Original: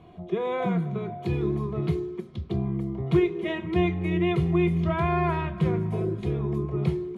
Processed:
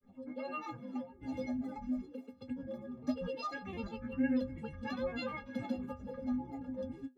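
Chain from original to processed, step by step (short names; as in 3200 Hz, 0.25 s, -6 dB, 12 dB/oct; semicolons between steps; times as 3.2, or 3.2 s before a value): grains, pitch spread up and down by 12 st; metallic resonator 250 Hz, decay 0.28 s, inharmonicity 0.03; gain +2.5 dB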